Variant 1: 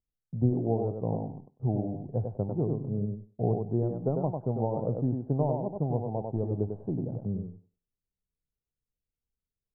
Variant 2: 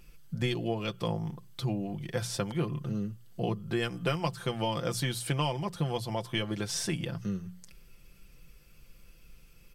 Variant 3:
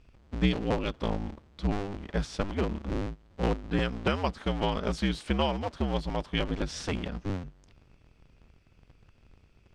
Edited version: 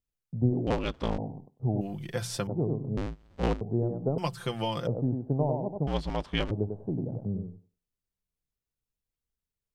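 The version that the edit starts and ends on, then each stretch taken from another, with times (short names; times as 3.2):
1
0.67–1.18 from 3
1.81–2.47 from 2
2.97–3.61 from 3
4.18–4.87 from 2
5.87–6.51 from 3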